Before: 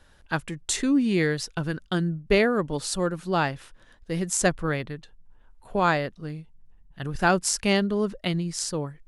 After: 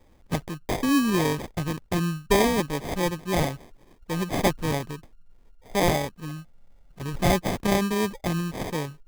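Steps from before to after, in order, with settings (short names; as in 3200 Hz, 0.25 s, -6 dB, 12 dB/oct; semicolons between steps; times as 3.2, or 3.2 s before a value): spectral repair 6.28–6.89, 360–1700 Hz after; sample-rate reducer 1400 Hz, jitter 0%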